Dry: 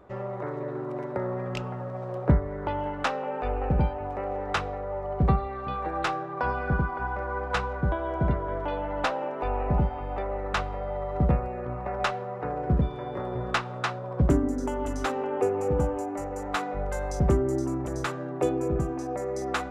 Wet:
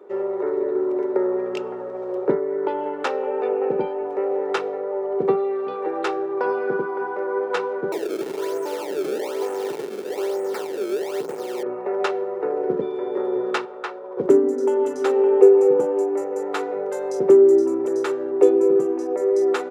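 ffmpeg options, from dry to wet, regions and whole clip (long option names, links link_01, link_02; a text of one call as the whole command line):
ffmpeg -i in.wav -filter_complex "[0:a]asettb=1/sr,asplit=3[link_01][link_02][link_03];[link_01]atrim=end=7.924[link_04];[link_02]atrim=start=7.92:end=11.63,asetpts=PTS-STARTPTS,afade=type=in:duration=0.004:curve=qsin,afade=type=out:start_time=3.706:duration=0.004:curve=qsin,acrusher=samples=26:mix=1:aa=0.000001:lfo=1:lforange=41.6:lforate=1.1,volume=29.5dB,asoftclip=hard,volume=-29.5dB[link_05];[link_03]atrim=start=11.626[link_06];[link_04][link_05]acrossfade=duration=0.004:curve1=hsin:curve2=qsin[link_07];[link_07][link_06]acrossfade=duration=0.004:curve1=qsin:curve2=hsin,asettb=1/sr,asplit=3[link_08][link_09][link_10];[link_08]atrim=end=13.654[link_11];[link_09]atrim=start=13.65:end=14.17,asetpts=PTS-STARTPTS,afade=type=in:duration=0.004:curve=qsin,afade=type=out:start_time=0.516:duration=0.004:curve=qsin,highpass=frequency=670:poles=1,highshelf=frequency=3400:gain=-11[link_12];[link_10]atrim=start=14.166[link_13];[link_11][link_12]acrossfade=duration=0.004:curve1=hsin:curve2=qsin[link_14];[link_14][link_13]acrossfade=duration=0.004:curve1=qsin:curve2=hsin,highpass=frequency=220:width=0.5412,highpass=frequency=220:width=1.3066,equalizer=frequency=400:width_type=o:width=0.54:gain=14.5,aecho=1:1:2.2:0.34" out.wav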